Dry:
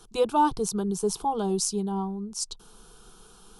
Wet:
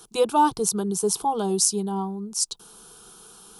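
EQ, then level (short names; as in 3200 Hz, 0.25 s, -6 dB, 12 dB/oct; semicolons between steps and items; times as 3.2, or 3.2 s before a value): HPF 150 Hz 6 dB/oct; high shelf 8500 Hz +10.5 dB; +3.0 dB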